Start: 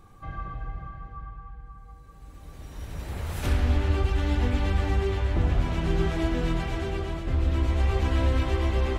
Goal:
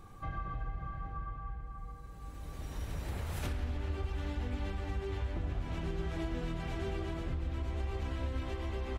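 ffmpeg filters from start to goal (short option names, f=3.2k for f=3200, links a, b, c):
-filter_complex "[0:a]acompressor=threshold=-34dB:ratio=6,asplit=2[a][b];[b]adelay=816.3,volume=-10dB,highshelf=f=4k:g=-18.4[c];[a][c]amix=inputs=2:normalize=0"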